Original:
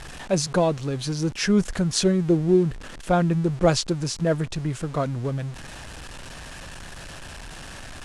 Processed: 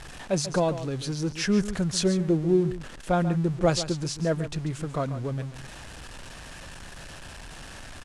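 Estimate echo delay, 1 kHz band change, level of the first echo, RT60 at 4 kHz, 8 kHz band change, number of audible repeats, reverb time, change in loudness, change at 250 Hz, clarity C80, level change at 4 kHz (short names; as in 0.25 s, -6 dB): 0.14 s, -3.5 dB, -12.5 dB, none, -3.5 dB, 1, none, -3.0 dB, -3.0 dB, none, -3.5 dB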